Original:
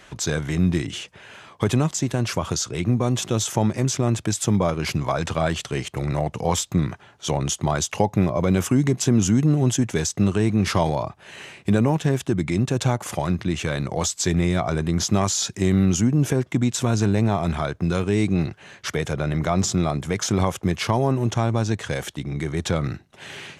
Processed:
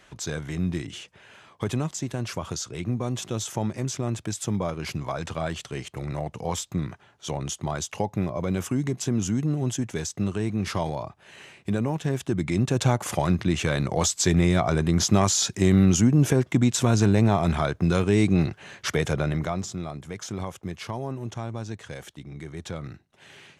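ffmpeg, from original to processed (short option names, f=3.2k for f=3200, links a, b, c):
-af "volume=0.5dB,afade=t=in:st=11.93:d=1.12:silence=0.421697,afade=t=out:st=19.14:d=0.5:silence=0.251189"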